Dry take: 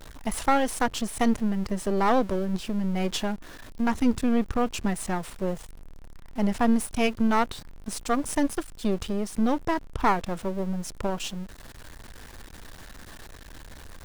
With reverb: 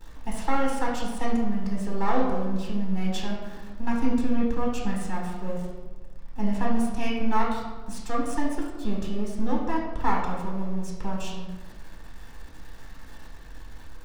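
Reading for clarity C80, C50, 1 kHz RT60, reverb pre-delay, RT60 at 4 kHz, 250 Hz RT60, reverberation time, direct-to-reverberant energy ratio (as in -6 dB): 5.0 dB, 2.5 dB, 1.2 s, 3 ms, 0.75 s, 1.4 s, 1.3 s, -3.0 dB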